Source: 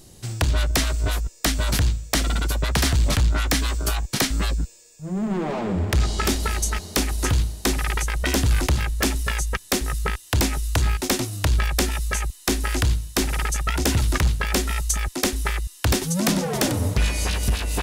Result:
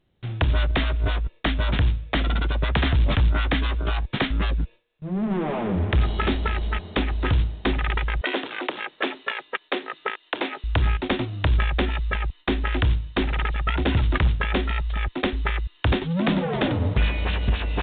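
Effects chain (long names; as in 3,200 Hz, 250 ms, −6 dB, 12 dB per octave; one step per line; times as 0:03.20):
noise gate with hold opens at −34 dBFS
0:08.21–0:10.64: high-pass filter 320 Hz 24 dB per octave
mu-law 64 kbit/s 8,000 Hz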